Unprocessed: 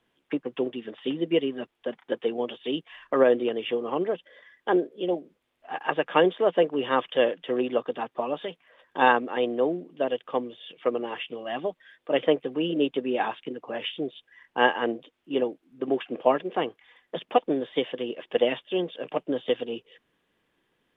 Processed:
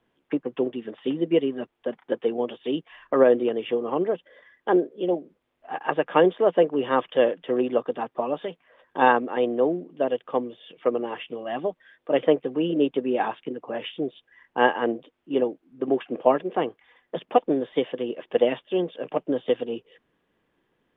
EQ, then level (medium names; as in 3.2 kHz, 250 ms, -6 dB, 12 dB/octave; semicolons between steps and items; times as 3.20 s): treble shelf 2.4 kHz -11 dB; +3.0 dB